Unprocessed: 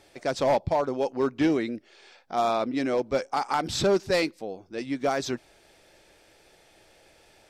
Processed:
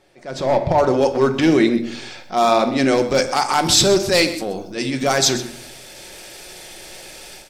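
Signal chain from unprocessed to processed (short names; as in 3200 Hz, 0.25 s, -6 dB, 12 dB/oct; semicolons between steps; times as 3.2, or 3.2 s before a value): transient shaper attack -9 dB, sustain +3 dB; compressor 2:1, threshold -30 dBFS, peak gain reduction 6 dB; high shelf 3400 Hz -5.5 dB, from 0.78 s +6 dB, from 2.88 s +11.5 dB; shoebox room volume 970 m³, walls furnished, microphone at 1 m; AGC gain up to 15 dB; echo 0.128 s -14.5 dB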